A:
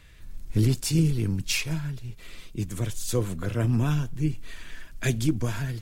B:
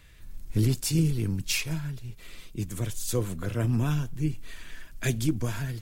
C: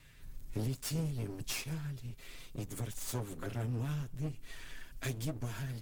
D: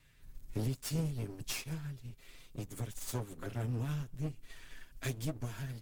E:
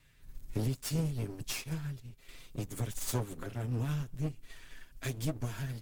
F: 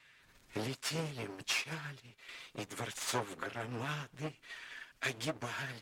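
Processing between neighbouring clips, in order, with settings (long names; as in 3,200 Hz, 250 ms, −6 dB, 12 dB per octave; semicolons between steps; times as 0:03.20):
high-shelf EQ 11,000 Hz +6.5 dB; level −2 dB
lower of the sound and its delayed copy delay 7.4 ms; downward compressor 2 to 1, threshold −36 dBFS, peak gain reduction 9 dB; level −3 dB
expander for the loud parts 1.5 to 1, over −48 dBFS; level +1.5 dB
sample-and-hold tremolo; level +5.5 dB
resonant band-pass 1,800 Hz, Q 0.64; level +8.5 dB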